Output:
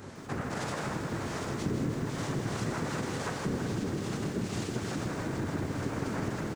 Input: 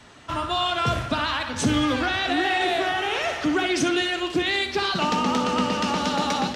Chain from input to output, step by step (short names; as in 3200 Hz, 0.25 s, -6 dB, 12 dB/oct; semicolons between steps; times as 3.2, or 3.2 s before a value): octaver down 1 oct, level +3 dB; limiter -17.5 dBFS, peak gain reduction 9.5 dB; doubler 13 ms -2.5 dB; noise vocoder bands 3; tilt -3.5 dB/oct; reverse echo 1.179 s -17 dB; compressor 2.5:1, threshold -27 dBFS, peak gain reduction 11.5 dB; high shelf 4700 Hz +7.5 dB; lo-fi delay 0.16 s, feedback 80%, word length 8-bit, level -8 dB; gain -7.5 dB